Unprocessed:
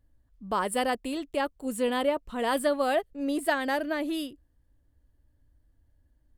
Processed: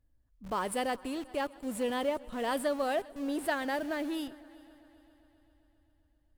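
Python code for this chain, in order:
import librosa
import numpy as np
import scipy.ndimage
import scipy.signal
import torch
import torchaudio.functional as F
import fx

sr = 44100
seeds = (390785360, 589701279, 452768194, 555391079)

p1 = fx.schmitt(x, sr, flips_db=-37.5)
p2 = x + F.gain(torch.from_numpy(p1), -11.0).numpy()
p3 = fx.echo_heads(p2, sr, ms=132, heads='first and third', feedback_pct=61, wet_db=-24)
y = F.gain(torch.from_numpy(p3), -6.0).numpy()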